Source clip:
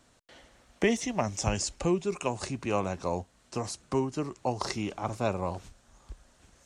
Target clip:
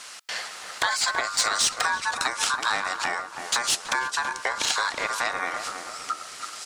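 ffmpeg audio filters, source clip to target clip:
-filter_complex "[0:a]acompressor=threshold=-40dB:ratio=6,aexciter=amount=5.3:drive=3.9:freq=2.3k,aeval=exprs='val(0)*sin(2*PI*1300*n/s)':c=same,asplit=2[a][b];[b]highpass=f=720:p=1,volume=20dB,asoftclip=type=tanh:threshold=-10dB[c];[a][c]amix=inputs=2:normalize=0,lowpass=f=2.7k:p=1,volume=-6dB,asplit=2[d][e];[e]adelay=328,lowpass=f=900:p=1,volume=-4dB,asplit=2[f][g];[g]adelay=328,lowpass=f=900:p=1,volume=0.53,asplit=2[h][i];[i]adelay=328,lowpass=f=900:p=1,volume=0.53,asplit=2[j][k];[k]adelay=328,lowpass=f=900:p=1,volume=0.53,asplit=2[l][m];[m]adelay=328,lowpass=f=900:p=1,volume=0.53,asplit=2[n][o];[o]adelay=328,lowpass=f=900:p=1,volume=0.53,asplit=2[p][q];[q]adelay=328,lowpass=f=900:p=1,volume=0.53[r];[f][h][j][l][n][p][r]amix=inputs=7:normalize=0[s];[d][s]amix=inputs=2:normalize=0,volume=6dB"

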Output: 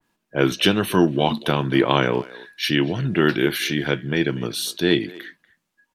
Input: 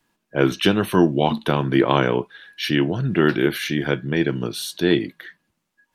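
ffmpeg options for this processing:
-filter_complex "[0:a]asettb=1/sr,asplit=3[a][b][c];[a]atrim=end=2.074[d];[b]atrim=start=2.07:end=2.63,asetpts=PTS-STARTPTS,afade=t=in:d=0.004:c=qsin,afade=t=out:st=0.556:d=0.004:c=qsin,equalizer=f=3.1k:w=7.3:g=-11.5[e];[c]atrim=start=2.626[f];[d][e]acrossfade=d=0.004:c1=hsin:c2=qsin[g];[g][f]acrossfade=d=0.004:c1=qsin:c2=hsin,asplit=2[h][i];[i]adelay=240,highpass=300,lowpass=3.4k,asoftclip=type=hard:threshold=-10.5dB,volume=-19dB[j];[h][j]amix=inputs=2:normalize=0,adynamicequalizer=threshold=0.0178:dfrequency=2000:dqfactor=0.7:tfrequency=2000:tqfactor=0.7:attack=5:release=100:ratio=0.375:range=2.5:mode=boostabove:tftype=highshelf,volume=-1dB"

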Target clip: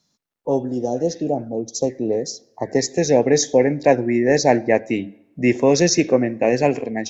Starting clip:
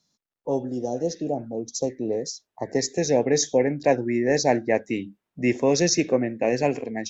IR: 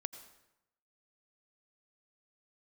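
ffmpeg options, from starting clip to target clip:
-filter_complex "[0:a]asplit=2[a][b];[1:a]atrim=start_sample=2205,lowpass=3.7k[c];[b][c]afir=irnorm=-1:irlink=0,volume=-11dB[d];[a][d]amix=inputs=2:normalize=0,volume=3.5dB"

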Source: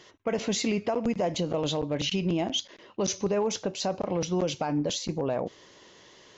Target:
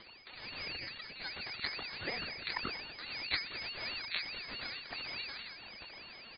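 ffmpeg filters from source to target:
-filter_complex "[0:a]acompressor=threshold=-36dB:ratio=10,aderivative,dynaudnorm=f=400:g=5:m=5dB,asoftclip=type=tanh:threshold=-36.5dB,asplit=2[a][b];[b]aecho=0:1:102|204|306|408|510:0.596|0.22|0.0815|0.0302|0.0112[c];[a][c]amix=inputs=2:normalize=0,alimiter=level_in=17.5dB:limit=-24dB:level=0:latency=1:release=12,volume=-17.5dB,aphaser=in_gain=1:out_gain=1:delay=4.3:decay=0.79:speed=1.2:type=sinusoidal,aeval=exprs='0.0282*(cos(1*acos(clip(val(0)/0.0282,-1,1)))-cos(1*PI/2))+0.01*(cos(2*acos(clip(val(0)/0.0282,-1,1)))-cos(2*PI/2))+0.000562*(cos(3*acos(clip(val(0)/0.0282,-1,1)))-cos(3*PI/2))':c=same,acrusher=bits=8:dc=4:mix=0:aa=0.000001,lowpass=f=3.1k:t=q:w=0.5098,lowpass=f=3.1k:t=q:w=0.6013,lowpass=f=3.1k:t=q:w=0.9,lowpass=f=3.1k:t=q:w=2.563,afreqshift=-3600,aeval=exprs='val(0)*sin(2*PI*1100*n/s+1100*0.3/4.7*sin(2*PI*4.7*n/s))':c=same,volume=13dB"

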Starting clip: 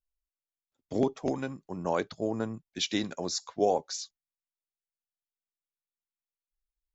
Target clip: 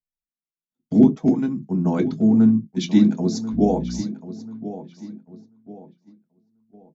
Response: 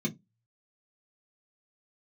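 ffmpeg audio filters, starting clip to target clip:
-filter_complex "[0:a]asplit=2[a][b];[b]adelay=1038,lowpass=f=3.3k:p=1,volume=-13.5dB,asplit=2[c][d];[d]adelay=1038,lowpass=f=3.3k:p=1,volume=0.39,asplit=2[e][f];[f]adelay=1038,lowpass=f=3.3k:p=1,volume=0.39,asplit=2[g][h];[h]adelay=1038,lowpass=f=3.3k:p=1,volume=0.39[i];[a][c][e][g][i]amix=inputs=5:normalize=0,asettb=1/sr,asplit=3[j][k][l];[j]atrim=end=3.534[m];[k]atrim=start=3.53:end=4.01,asetpts=PTS-STARTPTS,afade=t=in:d=0.004:c=qsin,afade=t=out:st=0.476:d=0.004:c=qsin,aeval=exprs='val(0)+0.0126*(sin(2*PI*60*n/s)+sin(2*PI*2*60*n/s)/2+sin(2*PI*3*60*n/s)/3+sin(2*PI*4*60*n/s)/4+sin(2*PI*5*60*n/s)/5)':c=same[n];[l]atrim=start=4.006[o];[m][n]acrossfade=d=0.004:c1=hsin:c2=qsin[p];[p][o]acrossfade=d=0.004:c1=qsin:c2=hsin,agate=range=-13dB:threshold=-56dB:ratio=16:detection=peak,asplit=2[q][r];[1:a]atrim=start_sample=2205,atrim=end_sample=4410,lowshelf=f=440:g=7.5[s];[r][s]afir=irnorm=-1:irlink=0,volume=-6dB[t];[q][t]amix=inputs=2:normalize=0,volume=-1dB"

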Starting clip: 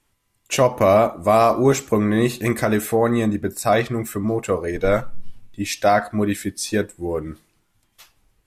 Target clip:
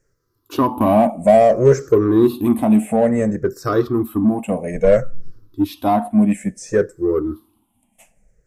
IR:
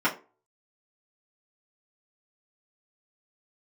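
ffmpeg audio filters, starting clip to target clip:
-filter_complex "[0:a]afftfilt=real='re*pow(10,20/40*sin(2*PI*(0.55*log(max(b,1)*sr/1024/100)/log(2)-(-0.59)*(pts-256)/sr)))':imag='im*pow(10,20/40*sin(2*PI*(0.55*log(max(b,1)*sr/1024/100)/log(2)-(-0.59)*(pts-256)/sr)))':win_size=1024:overlap=0.75,equalizer=f=250:t=o:w=1:g=7,equalizer=f=500:t=o:w=1:g=3,equalizer=f=2k:t=o:w=1:g=-5,equalizer=f=4k:t=o:w=1:g=-9,asplit=2[a][b];[b]asoftclip=type=tanh:threshold=-11dB,volume=-5dB[c];[a][c]amix=inputs=2:normalize=0,acrossover=split=4600[d][e];[e]acompressor=threshold=-30dB:ratio=4:attack=1:release=60[f];[d][f]amix=inputs=2:normalize=0,volume=-7dB"

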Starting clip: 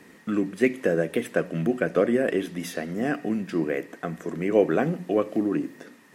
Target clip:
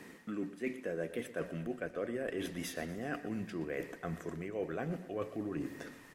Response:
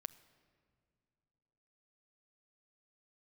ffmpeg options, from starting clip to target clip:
-af "asubboost=boost=10.5:cutoff=73,areverse,acompressor=threshold=-35dB:ratio=5,areverse,aecho=1:1:120|240|360|480|600:0.178|0.096|0.0519|0.028|0.0151,volume=-1dB"

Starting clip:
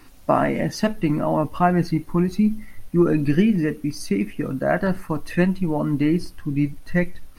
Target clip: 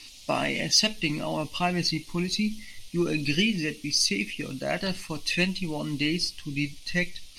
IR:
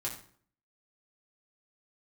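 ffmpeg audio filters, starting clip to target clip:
-af "lowpass=4.9k,aexciter=amount=9.7:drive=8.9:freq=2.4k,volume=-9dB"

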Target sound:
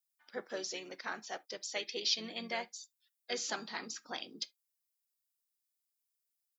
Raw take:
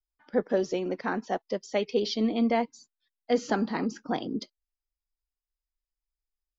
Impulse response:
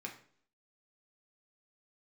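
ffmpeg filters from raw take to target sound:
-filter_complex "[0:a]aderivative,asplit=2[a][b];[b]asetrate=35002,aresample=44100,atempo=1.25992,volume=-10dB[c];[a][c]amix=inputs=2:normalize=0,asplit=2[d][e];[1:a]atrim=start_sample=2205,atrim=end_sample=3528[f];[e][f]afir=irnorm=-1:irlink=0,volume=-10.5dB[g];[d][g]amix=inputs=2:normalize=0,volume=5.5dB"

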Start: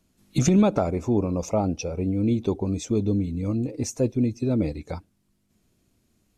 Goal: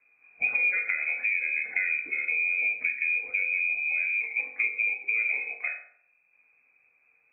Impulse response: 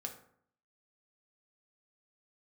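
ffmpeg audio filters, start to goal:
-filter_complex "[0:a]asetrate=38367,aresample=44100,lowpass=f=2.2k:t=q:w=0.5098,lowpass=f=2.2k:t=q:w=0.6013,lowpass=f=2.2k:t=q:w=0.9,lowpass=f=2.2k:t=q:w=2.563,afreqshift=-2600[a];[1:a]atrim=start_sample=2205[b];[a][b]afir=irnorm=-1:irlink=0,acrossover=split=560|1300[c][d][e];[c]acompressor=threshold=-57dB:ratio=4[f];[d]acompressor=threshold=-52dB:ratio=4[g];[e]acompressor=threshold=-31dB:ratio=4[h];[f][g][h]amix=inputs=3:normalize=0,volume=5dB"

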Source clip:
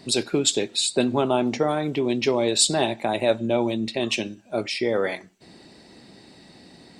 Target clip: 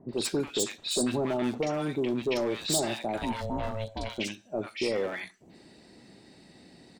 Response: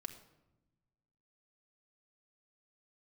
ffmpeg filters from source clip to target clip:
-filter_complex "[0:a]asplit=3[a][b][c];[a]afade=t=out:st=3.17:d=0.02[d];[b]aeval=exprs='val(0)*sin(2*PI*330*n/s)':c=same,afade=t=in:st=3.17:d=0.02,afade=t=out:st=4.17:d=0.02[e];[c]afade=t=in:st=4.17:d=0.02[f];[d][e][f]amix=inputs=3:normalize=0,asoftclip=type=hard:threshold=-18dB,acrossover=split=1000|4200[g][h][i];[h]adelay=90[j];[i]adelay=130[k];[g][j][k]amix=inputs=3:normalize=0,volume=-4.5dB"

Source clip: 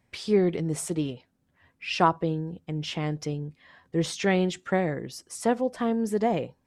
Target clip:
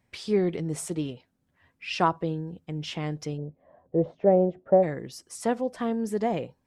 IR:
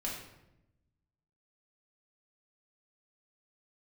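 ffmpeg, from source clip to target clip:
-filter_complex "[0:a]asplit=3[a][b][c];[a]afade=t=out:st=3.37:d=0.02[d];[b]lowpass=f=620:t=q:w=4.9,afade=t=in:st=3.37:d=0.02,afade=t=out:st=4.82:d=0.02[e];[c]afade=t=in:st=4.82:d=0.02[f];[d][e][f]amix=inputs=3:normalize=0,volume=-2dB"

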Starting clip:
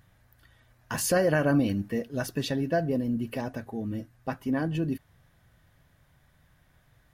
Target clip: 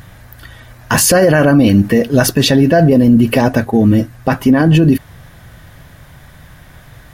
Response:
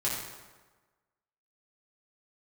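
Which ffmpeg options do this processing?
-filter_complex "[0:a]asettb=1/sr,asplit=3[a][b][c];[a]atrim=end=2.204[d];[b]atrim=start=2.2:end=3.91,asetpts=PTS-STARTPTS,afade=t=in:d=0.004:c=qsin,afade=t=out:st=1.706:d=0.004:c=qsin,agate=range=-33dB:threshold=-37dB:ratio=3:detection=peak[e];[c]atrim=start=3.906[f];[d][e]acrossfade=d=0.004:c1=hsin:c2=qsin[g];[g][f]acrossfade=d=0.004:c1=qsin:c2=hsin,alimiter=level_in=24.5dB:limit=-1dB:release=50:level=0:latency=1,volume=-1dB"

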